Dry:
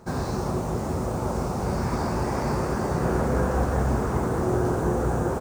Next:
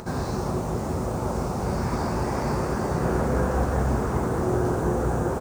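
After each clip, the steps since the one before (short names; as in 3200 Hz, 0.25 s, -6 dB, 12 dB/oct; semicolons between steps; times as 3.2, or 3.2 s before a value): upward compressor, threshold -31 dBFS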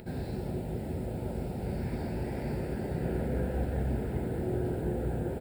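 fixed phaser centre 2700 Hz, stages 4; gain -6.5 dB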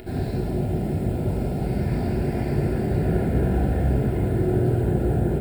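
shoebox room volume 2000 m³, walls furnished, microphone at 3.2 m; gain +5 dB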